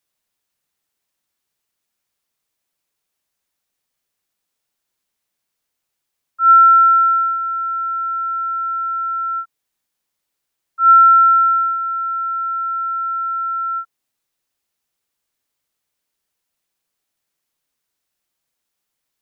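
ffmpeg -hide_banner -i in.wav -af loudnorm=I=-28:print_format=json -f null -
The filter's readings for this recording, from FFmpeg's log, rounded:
"input_i" : "-14.6",
"input_tp" : "-4.1",
"input_lra" : "8.6",
"input_thresh" : "-24.9",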